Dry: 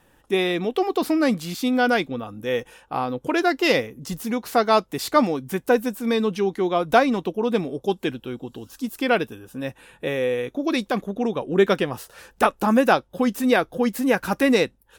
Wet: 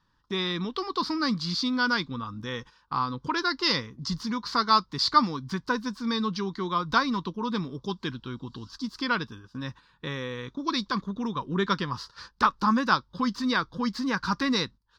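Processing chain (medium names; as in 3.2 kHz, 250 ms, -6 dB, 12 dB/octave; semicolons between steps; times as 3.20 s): in parallel at -3 dB: compression, threshold -31 dBFS, peak gain reduction 19 dB; on the sum: FFT filter 170 Hz 0 dB, 730 Hz -19 dB, 1 kHz +6 dB, 2.6 kHz -10 dB, 4.7 kHz +10 dB, 8 kHz -17 dB, 12 kHz -28 dB; gate -41 dBFS, range -12 dB; trim -2.5 dB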